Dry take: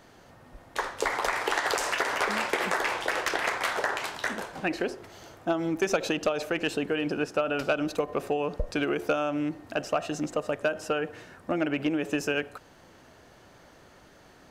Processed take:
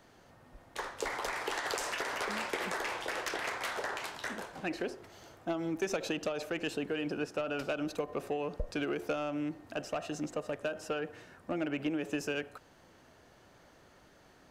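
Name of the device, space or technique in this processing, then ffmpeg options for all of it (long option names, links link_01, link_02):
one-band saturation: -filter_complex "[0:a]acrossover=split=480|2900[link_01][link_02][link_03];[link_02]asoftclip=type=tanh:threshold=-26dB[link_04];[link_01][link_04][link_03]amix=inputs=3:normalize=0,volume=-6dB"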